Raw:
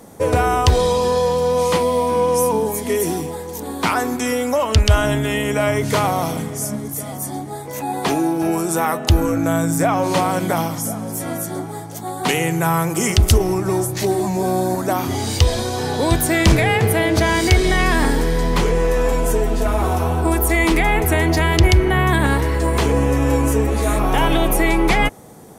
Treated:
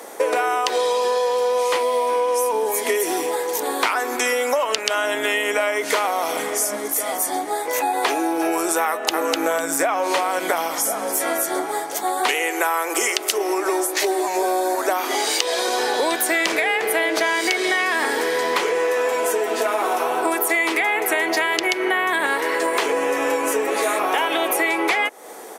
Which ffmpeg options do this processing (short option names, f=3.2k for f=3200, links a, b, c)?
-filter_complex "[0:a]asplit=2[a][b];[b]afade=t=in:st=8.88:d=0.01,afade=t=out:st=9.33:d=0.01,aecho=0:1:250|500|750:0.749894|0.112484|0.0168726[c];[a][c]amix=inputs=2:normalize=0,asettb=1/sr,asplit=3[d][e][f];[d]atrim=end=12.344[g];[e]atrim=start=12.34:end=15.68,asetpts=PTS-STARTPTS,afade=t=in:d=0.004:c=qsin,afade=t=out:st=3.336:d=0.004:c=qsin,highpass=f=280:w=0.5412,highpass=f=280:w=1.3066[h];[f]atrim=start=15.676[i];[g][h]acrossfade=d=0.004:c1=hsin:c2=qsin[j];[j][i]acrossfade=d=0.004:c1=qsin:c2=hsin,highpass=f=370:w=0.5412,highpass=f=370:w=1.3066,equalizer=f=2k:w=0.93:g=5,acompressor=threshold=-25dB:ratio=6,volume=7dB"